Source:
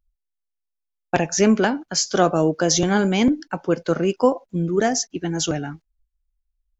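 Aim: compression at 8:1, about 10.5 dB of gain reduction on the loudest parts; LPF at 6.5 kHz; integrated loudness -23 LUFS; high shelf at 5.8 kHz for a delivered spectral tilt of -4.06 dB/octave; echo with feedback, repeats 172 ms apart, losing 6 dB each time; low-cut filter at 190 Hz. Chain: high-pass 190 Hz; low-pass 6.5 kHz; treble shelf 5.8 kHz -5 dB; compression 8:1, threshold -23 dBFS; feedback delay 172 ms, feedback 50%, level -6 dB; trim +4.5 dB

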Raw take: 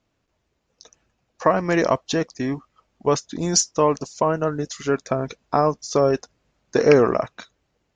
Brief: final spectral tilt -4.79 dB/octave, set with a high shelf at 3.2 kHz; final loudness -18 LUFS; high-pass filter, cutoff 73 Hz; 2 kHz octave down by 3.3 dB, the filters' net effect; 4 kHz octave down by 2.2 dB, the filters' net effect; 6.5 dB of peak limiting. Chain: high-pass 73 Hz; peaking EQ 2 kHz -4 dB; treble shelf 3.2 kHz +4 dB; peaking EQ 4 kHz -7 dB; trim +6 dB; peak limiter -4 dBFS

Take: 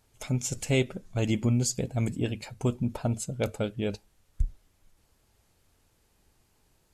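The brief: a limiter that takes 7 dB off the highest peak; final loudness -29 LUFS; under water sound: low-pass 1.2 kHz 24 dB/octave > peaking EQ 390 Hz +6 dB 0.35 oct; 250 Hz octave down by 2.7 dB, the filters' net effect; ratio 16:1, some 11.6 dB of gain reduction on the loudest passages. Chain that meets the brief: peaking EQ 250 Hz -4.5 dB; compression 16:1, threshold -33 dBFS; peak limiter -30.5 dBFS; low-pass 1.2 kHz 24 dB/octave; peaking EQ 390 Hz +6 dB 0.35 oct; trim +13 dB

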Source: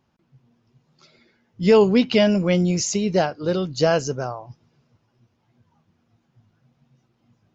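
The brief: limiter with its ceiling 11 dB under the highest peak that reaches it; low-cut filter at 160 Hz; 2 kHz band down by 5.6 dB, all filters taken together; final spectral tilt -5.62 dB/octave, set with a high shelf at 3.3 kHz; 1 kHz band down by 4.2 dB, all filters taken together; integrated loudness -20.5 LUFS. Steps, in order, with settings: high-pass 160 Hz; peaking EQ 1 kHz -5 dB; peaking EQ 2 kHz -3.5 dB; treble shelf 3.3 kHz -6.5 dB; trim +6 dB; peak limiter -11.5 dBFS

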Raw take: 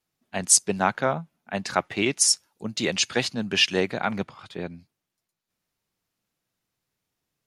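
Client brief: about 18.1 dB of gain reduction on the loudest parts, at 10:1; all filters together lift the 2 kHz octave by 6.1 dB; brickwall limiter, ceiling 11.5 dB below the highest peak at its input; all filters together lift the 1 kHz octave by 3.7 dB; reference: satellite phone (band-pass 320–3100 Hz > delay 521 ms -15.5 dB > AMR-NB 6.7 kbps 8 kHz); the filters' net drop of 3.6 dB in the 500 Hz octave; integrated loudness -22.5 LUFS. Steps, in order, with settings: peaking EQ 500 Hz -5.5 dB; peaking EQ 1 kHz +4.5 dB; peaking EQ 2 kHz +8.5 dB; compression 10:1, threshold -31 dBFS; peak limiter -25.5 dBFS; band-pass 320–3100 Hz; delay 521 ms -15.5 dB; trim +21 dB; AMR-NB 6.7 kbps 8 kHz

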